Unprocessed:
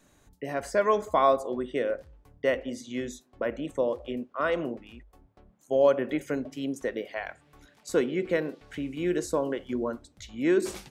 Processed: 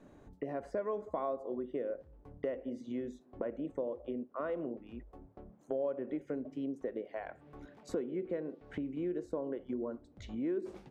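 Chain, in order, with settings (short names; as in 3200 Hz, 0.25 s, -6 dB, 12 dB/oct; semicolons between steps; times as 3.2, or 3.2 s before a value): LPF 1100 Hz 6 dB/oct; bell 370 Hz +7.5 dB 2.6 oct; compressor 3:1, threshold -41 dBFS, peak gain reduction 21.5 dB; gain +1 dB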